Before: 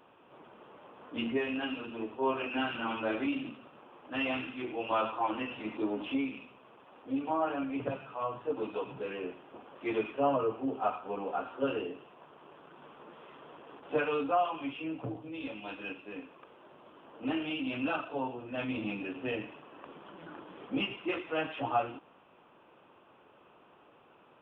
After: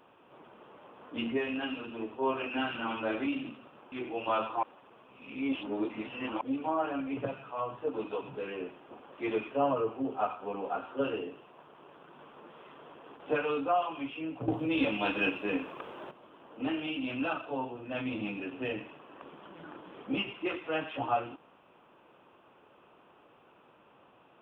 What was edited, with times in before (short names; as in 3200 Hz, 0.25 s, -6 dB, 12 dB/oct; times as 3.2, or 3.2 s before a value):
3.92–4.55 cut
5.26–7.04 reverse
15.11–16.74 gain +11.5 dB